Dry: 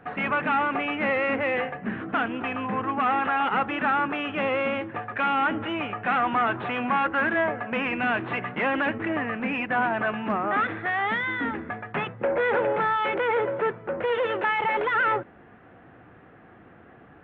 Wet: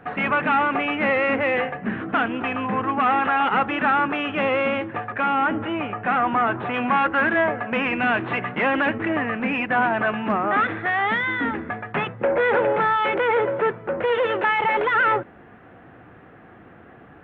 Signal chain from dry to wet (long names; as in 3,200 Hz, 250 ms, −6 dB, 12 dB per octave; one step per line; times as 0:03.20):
0:05.12–0:06.74: high-shelf EQ 3,300 Hz −12 dB
level +4 dB